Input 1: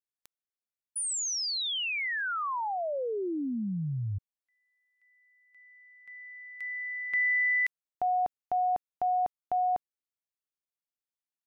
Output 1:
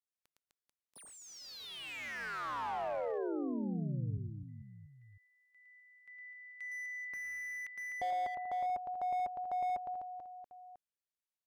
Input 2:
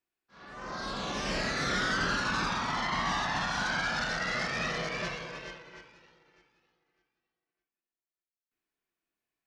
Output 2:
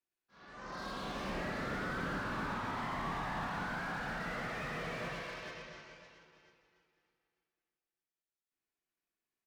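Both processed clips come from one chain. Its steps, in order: reverse bouncing-ball echo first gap 110 ms, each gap 1.3×, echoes 5; low-pass that closes with the level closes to 2.5 kHz, closed at -25.5 dBFS; slew-rate limiter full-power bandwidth 36 Hz; trim -6.5 dB

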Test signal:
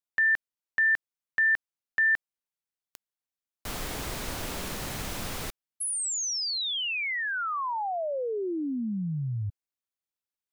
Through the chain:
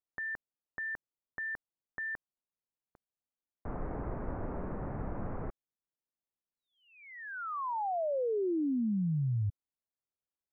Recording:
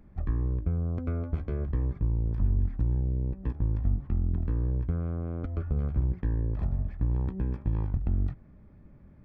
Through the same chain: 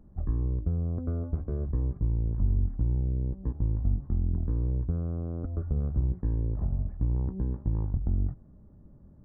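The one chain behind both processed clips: Gaussian low-pass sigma 7.2 samples

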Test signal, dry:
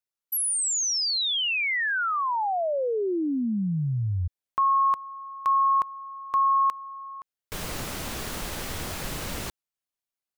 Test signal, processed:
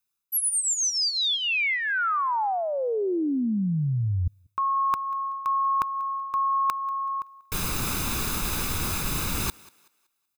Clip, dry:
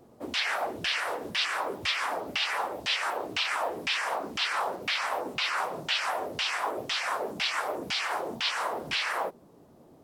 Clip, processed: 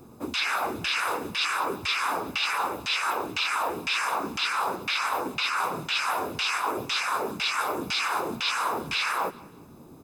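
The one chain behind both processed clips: treble shelf 10 kHz +7 dB; comb 0.8 ms, depth 56%; dynamic bell 1.1 kHz, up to -3 dB, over -28 dBFS, Q 4.3; reverse; compression, threshold -30 dBFS; reverse; thinning echo 189 ms, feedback 33%, high-pass 320 Hz, level -21.5 dB; trim +6 dB

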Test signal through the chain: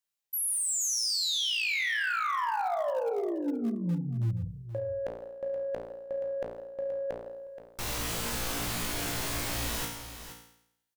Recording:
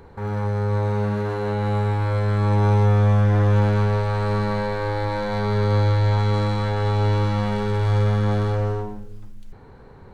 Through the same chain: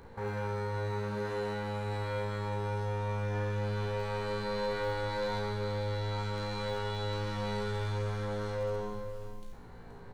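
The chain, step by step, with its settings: treble shelf 2.3 kHz +3.5 dB; hum notches 50/100/150/200/250/300/350/400/450 Hz; reverse; compression 12:1, threshold -23 dBFS; reverse; feedback comb 58 Hz, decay 0.74 s, harmonics all, mix 90%; in parallel at -9 dB: bit crusher 5-bit; on the sum: saturation -31 dBFS; delay 476 ms -11.5 dB; trim +6.5 dB

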